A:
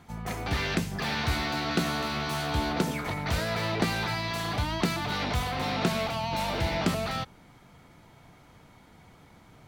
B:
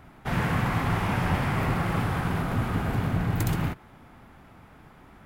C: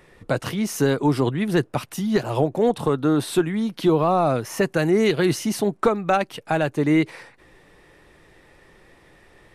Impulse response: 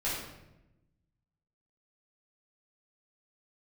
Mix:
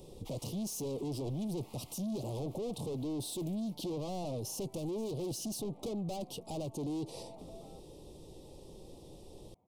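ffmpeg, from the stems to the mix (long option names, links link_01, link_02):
-filter_complex "[0:a]lowpass=frequency=1600:width=0.5412,lowpass=frequency=1600:width=1.3066,aemphasis=mode=production:type=riaa,acompressor=threshold=-38dB:ratio=2,adelay=550,volume=-10.5dB[link_01];[1:a]highpass=frequency=1100:width=0.5412,highpass=frequency=1100:width=1.3066,volume=-2.5dB[link_02];[2:a]equalizer=frequency=2200:width_type=o:width=0.33:gain=-9.5,bandreject=frequency=670:width=16,asoftclip=type=tanh:threshold=-22.5dB,volume=3dB,asplit=2[link_03][link_04];[link_04]apad=whole_len=231542[link_05];[link_02][link_05]sidechaincompress=threshold=-29dB:ratio=8:attack=16:release=890[link_06];[link_01][link_06][link_03]amix=inputs=3:normalize=0,asoftclip=type=tanh:threshold=-26.5dB,asuperstop=centerf=1600:order=4:qfactor=0.53,alimiter=level_in=9dB:limit=-24dB:level=0:latency=1:release=184,volume=-9dB"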